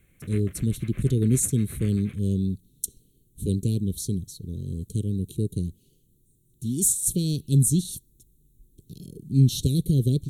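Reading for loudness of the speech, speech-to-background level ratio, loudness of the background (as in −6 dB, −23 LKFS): −25.5 LKFS, 19.0 dB, −44.5 LKFS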